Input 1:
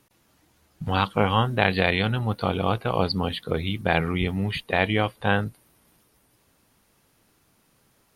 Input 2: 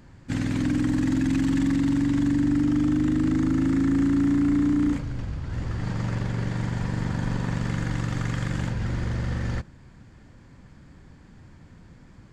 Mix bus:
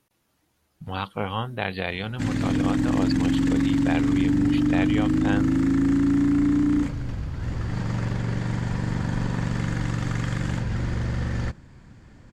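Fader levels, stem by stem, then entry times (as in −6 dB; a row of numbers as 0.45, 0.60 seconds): −7.0, +1.0 decibels; 0.00, 1.90 seconds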